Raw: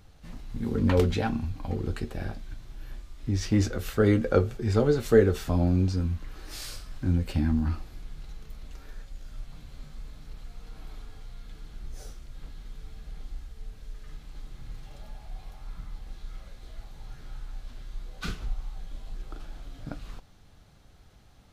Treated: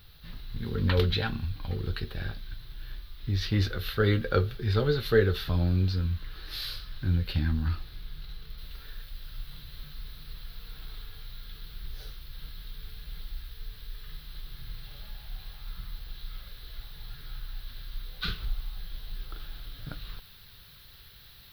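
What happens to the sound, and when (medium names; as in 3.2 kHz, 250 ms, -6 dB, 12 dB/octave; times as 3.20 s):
8.58 s: noise floor step -63 dB -56 dB
whole clip: FFT filter 150 Hz 0 dB, 260 Hz -10 dB, 420 Hz -3 dB, 710 Hz -9 dB, 1.6 kHz +4 dB, 2.3 kHz 0 dB, 4 kHz +11 dB, 7.4 kHz -21 dB, 12 kHz +1 dB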